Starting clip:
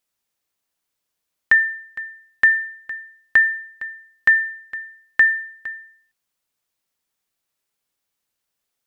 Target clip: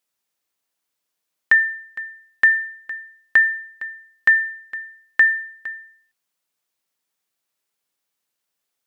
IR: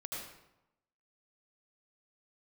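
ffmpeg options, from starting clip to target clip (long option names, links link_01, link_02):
-af "highpass=frequency=170:poles=1"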